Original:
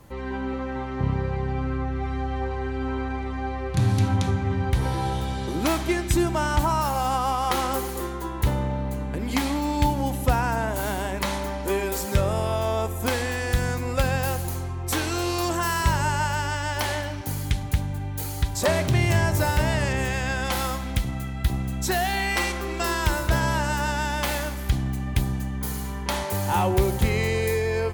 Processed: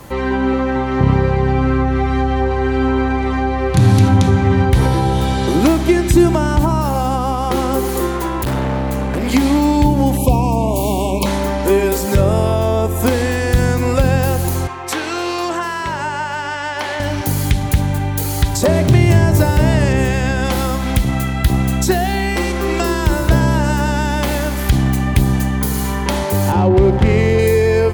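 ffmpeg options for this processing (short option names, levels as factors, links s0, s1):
-filter_complex "[0:a]asettb=1/sr,asplit=3[s0][s1][s2];[s0]atrim=end=8.114[s3];[s1]atrim=start=8.11:end=9.34,asetpts=PTS-STARTPTS,afade=t=in:d=0.004:c=qsin,afade=t=out:st=1.226:d=0.004:c=qsin,volume=26.6,asoftclip=hard,volume=0.0376[s4];[s2]atrim=start=9.336[s5];[s3][s4]acrossfade=d=0.004:c1=hsin:c2=qsin[s6];[s6][s5]acrossfade=d=0.004:c1=qsin:c2=hsin,asettb=1/sr,asplit=3[s7][s8][s9];[s7]atrim=end=10.174[s10];[s8]atrim=start=10.17:end=11.26,asetpts=PTS-STARTPTS,afade=t=in:d=0.004:c=qsin,afade=t=out:st=1.086:d=0.004:c=qsin,asuperstop=centerf=1600:order=20:qfactor=1.5[s11];[s9]atrim=start=11.256[s12];[s10][s11]acrossfade=d=0.004:c1=hsin:c2=qsin[s13];[s13][s12]acrossfade=d=0.004:c1=qsin:c2=hsin,asettb=1/sr,asplit=3[s14][s15][s16];[s14]atrim=end=14.674[s17];[s15]atrim=start=14.67:end=17,asetpts=PTS-STARTPTS,afade=t=in:d=0.004:c=qsin,afade=t=out:st=2.326:d=0.004:c=qsin,bandpass=f=1600:t=q:w=0.51[s18];[s16]atrim=start=16.996[s19];[s17][s18]acrossfade=d=0.004:c1=hsin:c2=qsin[s20];[s20][s19]acrossfade=d=0.004:c1=qsin:c2=hsin,asettb=1/sr,asplit=3[s21][s22][s23];[s21]atrim=end=26.524[s24];[s22]atrim=start=26.52:end=27.39,asetpts=PTS-STARTPTS,afade=t=in:d=0.004:c=qsin,afade=t=out:st=0.866:d=0.004:c=qsin,adynamicsmooth=sensitivity=2.5:basefreq=920[s25];[s23]atrim=start=27.386[s26];[s24][s25]acrossfade=d=0.004:c1=hsin:c2=qsin[s27];[s27][s26]acrossfade=d=0.004:c1=qsin:c2=hsin,lowshelf=f=170:g=-6,acrossover=split=470[s28][s29];[s29]acompressor=threshold=0.0158:ratio=10[s30];[s28][s30]amix=inputs=2:normalize=0,alimiter=level_in=6.68:limit=0.891:release=50:level=0:latency=1,volume=0.891"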